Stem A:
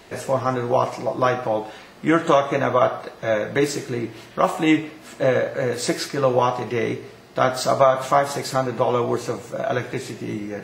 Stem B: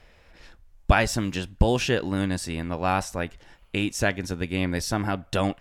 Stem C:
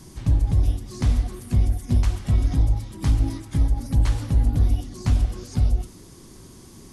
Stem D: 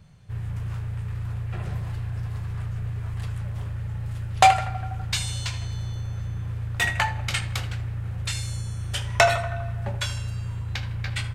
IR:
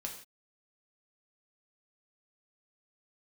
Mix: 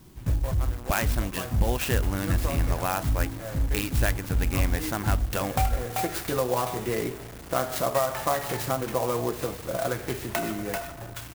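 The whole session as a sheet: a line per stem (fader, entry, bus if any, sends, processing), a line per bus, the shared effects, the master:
−2.0 dB, 0.15 s, bus A, no send, no echo send, automatic ducking −15 dB, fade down 0.55 s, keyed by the second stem
+1.0 dB, 0.00 s, bus A, no send, no echo send, low-pass filter 2,000 Hz 6 dB per octave; tilt shelving filter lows −6.5 dB, about 810 Hz
−6.5 dB, 0.00 s, no bus, no send, no echo send, no processing
−9.5 dB, 1.15 s, bus A, no send, echo send −5.5 dB, no processing
bus A: 0.0 dB, centre clipping without the shift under −37 dBFS; downward compressor 2 to 1, threshold −26 dBFS, peak gain reduction 8 dB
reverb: not used
echo: single-tap delay 388 ms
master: converter with an unsteady clock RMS 0.057 ms

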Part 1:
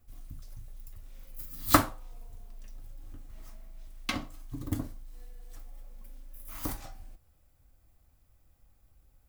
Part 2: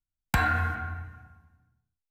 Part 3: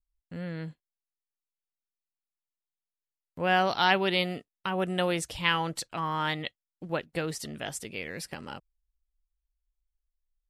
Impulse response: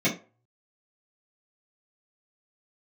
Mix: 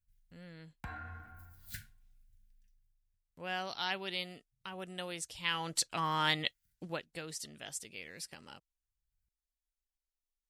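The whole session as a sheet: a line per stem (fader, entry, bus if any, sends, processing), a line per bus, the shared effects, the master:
−19.5 dB, 0.00 s, no send, brick-wall band-stop 220–1,400 Hz; automatic ducking −23 dB, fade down 0.85 s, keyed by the third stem
−19.5 dB, 0.50 s, no send, high-shelf EQ 4,100 Hz −11 dB
0:05.34 −16 dB → 0:05.90 −4 dB → 0:06.83 −4 dB → 0:07.05 −14 dB, 0.00 s, no send, parametric band 7,100 Hz +11.5 dB 2.6 octaves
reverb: not used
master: no processing

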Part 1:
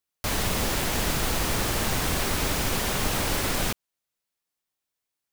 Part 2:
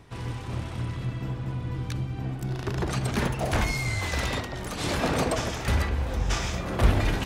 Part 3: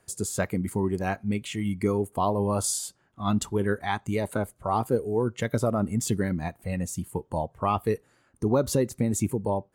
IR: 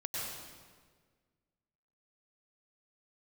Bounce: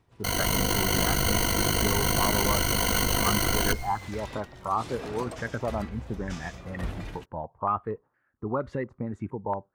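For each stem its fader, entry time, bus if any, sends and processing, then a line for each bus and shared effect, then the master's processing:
−3.0 dB, 0.00 s, bus A, send −19.5 dB, EQ curve with evenly spaced ripples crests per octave 1.9, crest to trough 18 dB; ring modulation 25 Hz
−8.0 dB, 0.00 s, bus A, no send, automatic ducking −11 dB, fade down 0.25 s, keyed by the third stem
−8.0 dB, 0.00 s, no bus, no send, low-pass on a step sequencer 4.3 Hz 930–1,900 Hz
bus A: 0.0 dB, automatic gain control gain up to 6 dB; brickwall limiter −14 dBFS, peak gain reduction 6.5 dB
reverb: on, RT60 1.6 s, pre-delay 91 ms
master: noise gate −48 dBFS, range −7 dB

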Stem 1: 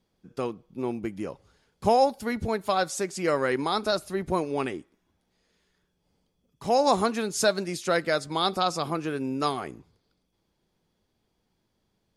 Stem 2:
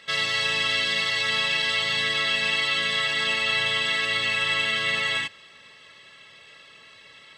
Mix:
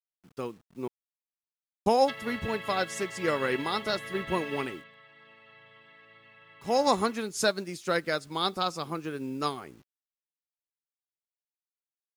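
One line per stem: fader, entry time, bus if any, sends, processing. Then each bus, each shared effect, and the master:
+0.5 dB, 0.00 s, muted 0:00.88–0:01.86, no send, parametric band 680 Hz −5 dB 0.47 octaves; bit reduction 9 bits
0:04.60 −3 dB → 0:04.96 −16 dB, 2.00 s, no send, treble cut that deepens with the level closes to 1,600 Hz, closed at −24 dBFS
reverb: not used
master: expander for the loud parts 1.5 to 1, over −36 dBFS

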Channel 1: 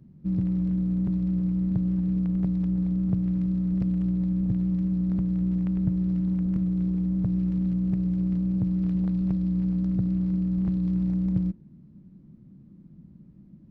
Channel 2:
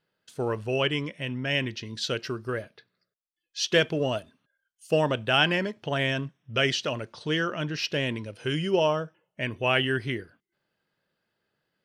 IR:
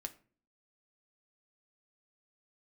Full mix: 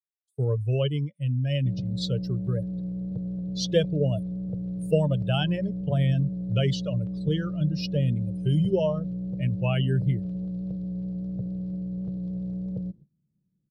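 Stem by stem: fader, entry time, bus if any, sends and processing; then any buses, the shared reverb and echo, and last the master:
−18.5 dB, 1.40 s, no send, sine wavefolder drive 4 dB, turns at −13 dBFS
−2.5 dB, 0.00 s, no send, spectral dynamics exaggerated over time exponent 2; parametric band 110 Hz +7.5 dB 1.3 octaves; multiband upward and downward compressor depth 40%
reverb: not used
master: parametric band 170 Hz +3.5 dB 1.3 octaves; noise gate −50 dBFS, range −20 dB; graphic EQ with 10 bands 125 Hz +8 dB, 250 Hz −5 dB, 500 Hz +10 dB, 1,000 Hz −5 dB, 2,000 Hz −8 dB, 4,000 Hz +6 dB

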